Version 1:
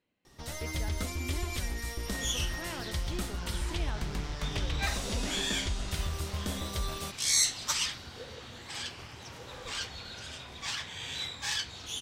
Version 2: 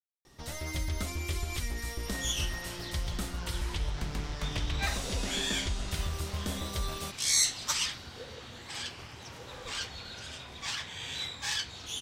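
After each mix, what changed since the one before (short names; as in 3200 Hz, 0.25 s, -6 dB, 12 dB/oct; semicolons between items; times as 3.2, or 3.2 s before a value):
speech: muted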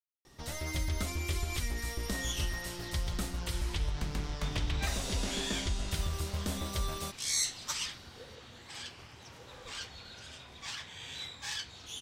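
second sound -5.5 dB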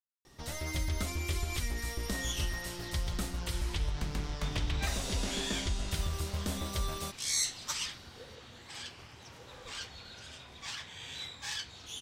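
none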